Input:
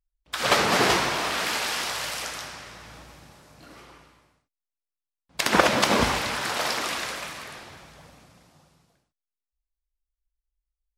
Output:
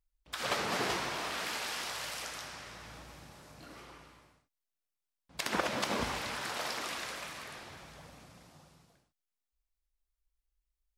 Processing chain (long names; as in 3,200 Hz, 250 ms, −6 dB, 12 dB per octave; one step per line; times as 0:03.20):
downward compressor 1.5 to 1, threshold −53 dBFS, peak gain reduction 14.5 dB